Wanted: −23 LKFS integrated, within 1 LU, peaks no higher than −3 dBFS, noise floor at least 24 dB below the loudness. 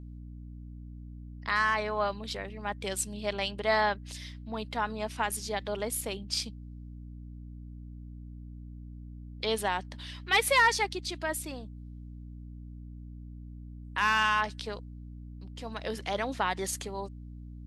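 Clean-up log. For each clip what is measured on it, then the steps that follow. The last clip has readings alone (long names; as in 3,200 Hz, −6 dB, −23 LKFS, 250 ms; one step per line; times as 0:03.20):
mains hum 60 Hz; hum harmonics up to 300 Hz; level of the hum −41 dBFS; integrated loudness −30.5 LKFS; sample peak −13.5 dBFS; target loudness −23.0 LKFS
→ mains-hum notches 60/120/180/240/300 Hz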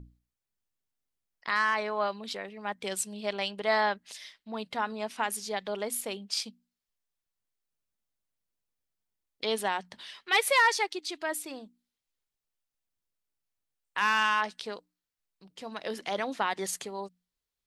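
mains hum none found; integrated loudness −30.0 LKFS; sample peak −13.5 dBFS; target loudness −23.0 LKFS
→ level +7 dB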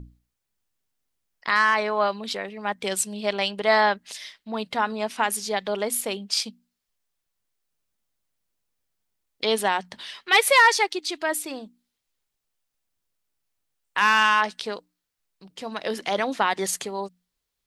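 integrated loudness −23.0 LKFS; sample peak −6.5 dBFS; background noise floor −82 dBFS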